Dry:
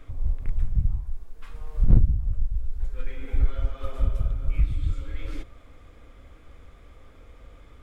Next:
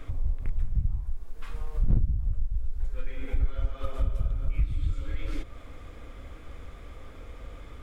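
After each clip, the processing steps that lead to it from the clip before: compressor 2:1, threshold -34 dBFS, peak gain reduction 13.5 dB; gain +5.5 dB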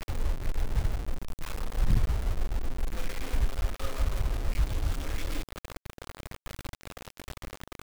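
bit-crush 6-bit; gain -1.5 dB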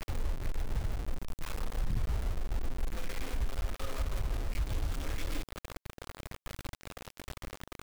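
limiter -23 dBFS, peak gain reduction 8 dB; gain -2 dB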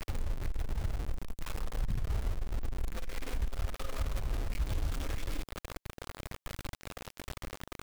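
core saturation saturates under 28 Hz; gain +1.5 dB

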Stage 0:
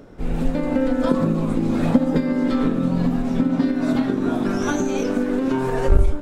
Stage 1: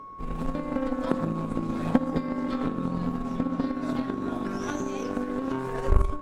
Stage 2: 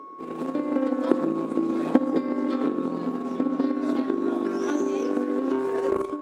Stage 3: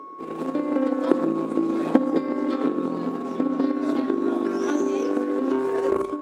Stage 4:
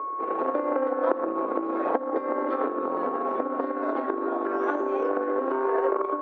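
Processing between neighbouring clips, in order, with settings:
whine 1100 Hz -30 dBFS; added harmonics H 3 -15 dB, 6 -21 dB, 8 -29 dB, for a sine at -3 dBFS; gain -3.5 dB
resonant high-pass 330 Hz, resonance Q 3.6
notches 50/100/150/200/250 Hz; gain +2 dB
compressor 6:1, threshold -24 dBFS, peak gain reduction 13.5 dB; Butterworth band-pass 890 Hz, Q 0.77; gain +8.5 dB

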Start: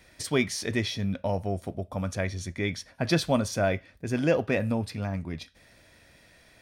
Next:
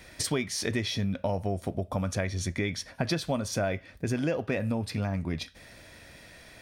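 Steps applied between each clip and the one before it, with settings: compressor 5:1, threshold -33 dBFS, peak gain reduction 14 dB; gain +6.5 dB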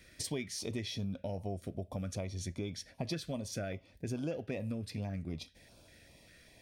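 stepped notch 5.1 Hz 860–1900 Hz; gain -8 dB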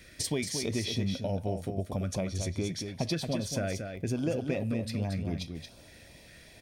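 echo 0.228 s -6.5 dB; gain +6 dB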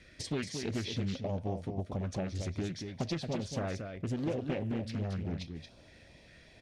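air absorption 81 m; Doppler distortion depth 0.66 ms; gain -3 dB

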